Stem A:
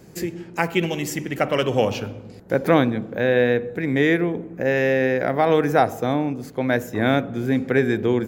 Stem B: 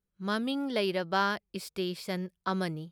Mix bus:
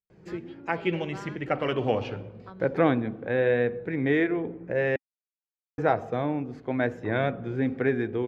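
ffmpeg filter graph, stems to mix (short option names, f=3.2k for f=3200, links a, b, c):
-filter_complex "[0:a]adelay=100,volume=-4.5dB,asplit=3[a][b][c];[a]atrim=end=4.96,asetpts=PTS-STARTPTS,afade=t=out:st=4.956:d=0.004:c=hsin[d];[b]atrim=start=4.96:end=5.78,asetpts=PTS-STARTPTS,volume=0[e];[c]atrim=start=5.78,asetpts=PTS-STARTPTS,afade=t=in:d=0.004:c=hsin[f];[d][e][f]concat=n=3:v=0:a=1[g];[1:a]volume=-14.5dB[h];[g][h]amix=inputs=2:normalize=0,lowpass=2.8k,dynaudnorm=f=130:g=9:m=3.5dB,flanger=delay=1.6:depth=1.4:regen=-66:speed=0.82:shape=triangular"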